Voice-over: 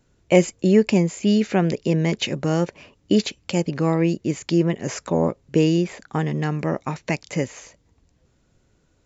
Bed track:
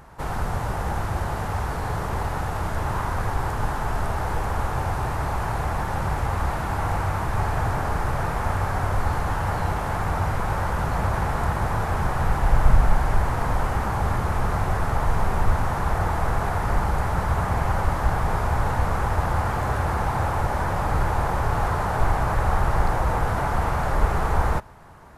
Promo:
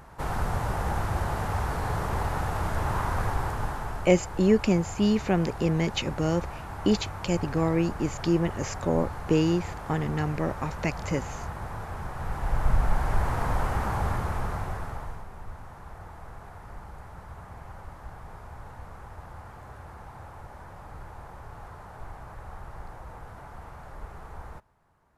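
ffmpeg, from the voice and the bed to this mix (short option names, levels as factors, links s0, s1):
-filter_complex "[0:a]adelay=3750,volume=0.562[s0];[1:a]volume=2.11,afade=t=out:st=3.21:d=0.93:silence=0.316228,afade=t=in:st=12.13:d=1.2:silence=0.375837,afade=t=out:st=13.95:d=1.3:silence=0.141254[s1];[s0][s1]amix=inputs=2:normalize=0"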